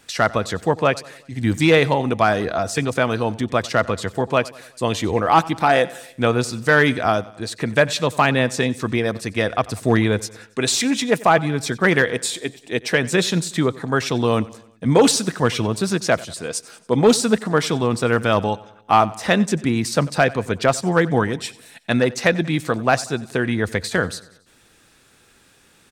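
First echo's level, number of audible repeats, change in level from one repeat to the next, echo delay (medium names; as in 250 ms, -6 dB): -20.5 dB, 3, -5.5 dB, 93 ms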